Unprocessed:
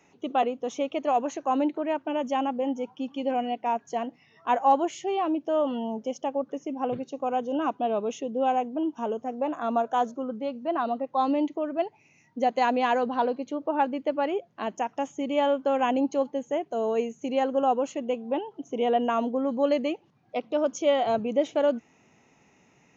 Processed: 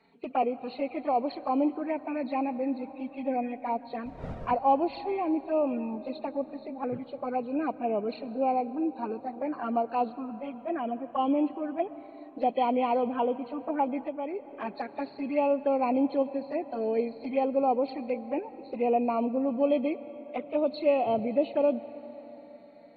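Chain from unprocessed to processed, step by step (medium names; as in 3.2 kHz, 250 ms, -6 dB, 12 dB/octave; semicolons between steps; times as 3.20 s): knee-point frequency compression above 1.8 kHz 1.5:1; 4.05–4.54 s: wind noise 380 Hz -34 dBFS; touch-sensitive flanger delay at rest 4.6 ms, full sweep at -22 dBFS; reverberation RT60 4.6 s, pre-delay 85 ms, DRR 15.5 dB; 14.05–14.53 s: compression 2:1, threshold -35 dBFS, peak gain reduction 7 dB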